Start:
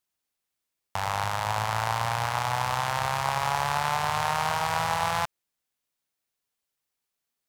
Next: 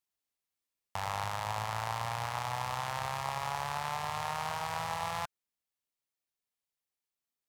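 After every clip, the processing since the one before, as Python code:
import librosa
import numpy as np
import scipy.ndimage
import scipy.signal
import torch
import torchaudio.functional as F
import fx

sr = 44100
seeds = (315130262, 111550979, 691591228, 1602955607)

y = fx.notch(x, sr, hz=1500.0, q=15.0)
y = fx.rider(y, sr, range_db=10, speed_s=0.5)
y = y * librosa.db_to_amplitude(-8.0)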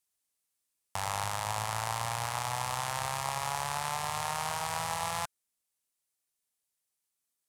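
y = fx.peak_eq(x, sr, hz=9400.0, db=10.5, octaves=1.3)
y = y * librosa.db_to_amplitude(1.0)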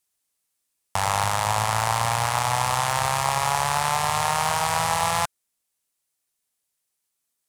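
y = fx.leveller(x, sr, passes=1)
y = y * librosa.db_to_amplitude(7.5)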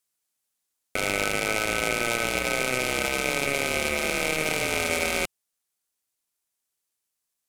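y = x * np.sin(2.0 * np.pi * 1400.0 * np.arange(len(x)) / sr)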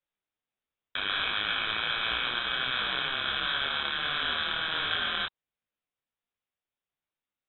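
y = fx.freq_invert(x, sr, carrier_hz=3800)
y = fx.detune_double(y, sr, cents=49)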